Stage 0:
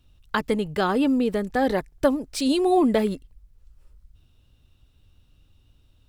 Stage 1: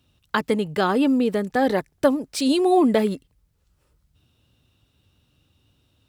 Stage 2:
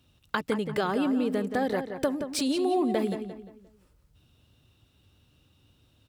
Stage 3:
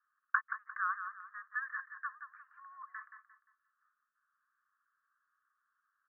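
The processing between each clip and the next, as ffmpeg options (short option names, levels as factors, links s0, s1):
-af "highpass=110,volume=1.26"
-filter_complex "[0:a]acompressor=threshold=0.0398:ratio=2.5,asplit=2[s0][s1];[s1]adelay=175,lowpass=f=3100:p=1,volume=0.398,asplit=2[s2][s3];[s3]adelay=175,lowpass=f=3100:p=1,volume=0.38,asplit=2[s4][s5];[s5]adelay=175,lowpass=f=3100:p=1,volume=0.38,asplit=2[s6][s7];[s7]adelay=175,lowpass=f=3100:p=1,volume=0.38[s8];[s2][s4][s6][s8]amix=inputs=4:normalize=0[s9];[s0][s9]amix=inputs=2:normalize=0"
-af "asuperpass=centerf=1400:order=12:qfactor=2,volume=1.12"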